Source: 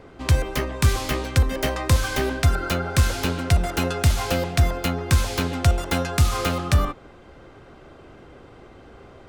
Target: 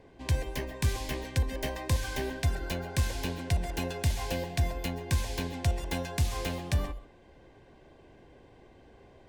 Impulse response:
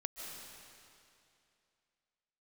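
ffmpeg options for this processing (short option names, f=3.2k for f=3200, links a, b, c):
-filter_complex "[0:a]asuperstop=centerf=1300:order=4:qfactor=3.6[a];[1:a]atrim=start_sample=2205,atrim=end_sample=6174[b];[a][b]afir=irnorm=-1:irlink=0,volume=-6.5dB"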